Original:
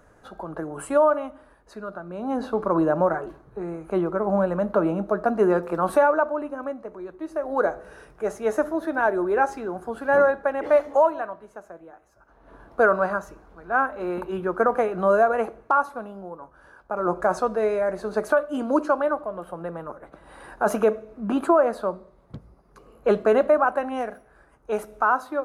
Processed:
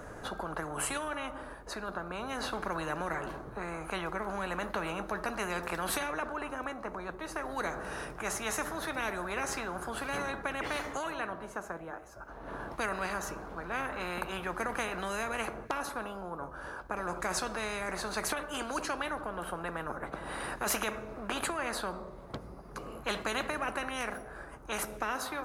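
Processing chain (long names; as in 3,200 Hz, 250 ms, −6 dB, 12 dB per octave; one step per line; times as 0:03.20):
every bin compressed towards the loudest bin 4 to 1
level −8.5 dB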